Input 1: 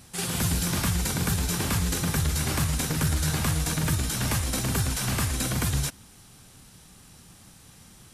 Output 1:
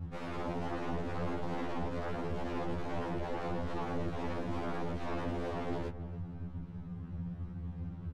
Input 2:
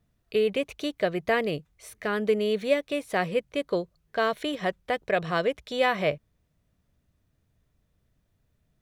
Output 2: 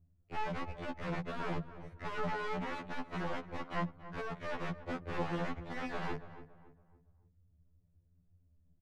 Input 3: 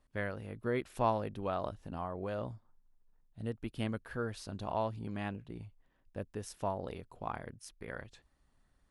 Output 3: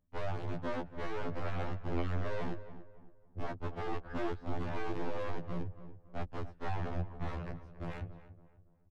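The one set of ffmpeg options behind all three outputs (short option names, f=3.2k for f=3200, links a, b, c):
-filter_complex "[0:a]agate=range=-11dB:threshold=-55dB:ratio=16:detection=peak,bass=f=250:g=11,treble=f=4k:g=-5,acrossover=split=230[a][b];[b]alimiter=limit=-19.5dB:level=0:latency=1:release=56[c];[a][c]amix=inputs=2:normalize=0,acompressor=threshold=-26dB:ratio=6,aeval=exprs='(mod(31.6*val(0)+1,2)-1)/31.6':c=same,aeval=exprs='0.0335*(cos(1*acos(clip(val(0)/0.0335,-1,1)))-cos(1*PI/2))+0.00944*(cos(2*acos(clip(val(0)/0.0335,-1,1)))-cos(2*PI/2))+0.00168*(cos(4*acos(clip(val(0)/0.0335,-1,1)))-cos(4*PI/2))+0.00841*(cos(5*acos(clip(val(0)/0.0335,-1,1)))-cos(5*PI/2))+0.00376*(cos(7*acos(clip(val(0)/0.0335,-1,1)))-cos(7*PI/2))':c=same,adynamicsmooth=sensitivity=2.5:basefreq=1k,asplit=2[d][e];[e]adelay=281,lowpass=f=1.6k:p=1,volume=-13dB,asplit=2[f][g];[g]adelay=281,lowpass=f=1.6k:p=1,volume=0.38,asplit=2[h][i];[i]adelay=281,lowpass=f=1.6k:p=1,volume=0.38,asplit=2[j][k];[k]adelay=281,lowpass=f=1.6k:p=1,volume=0.38[l];[d][f][h][j][l]amix=inputs=5:normalize=0,afftfilt=real='re*2*eq(mod(b,4),0)':imag='im*2*eq(mod(b,4),0)':win_size=2048:overlap=0.75,volume=2dB"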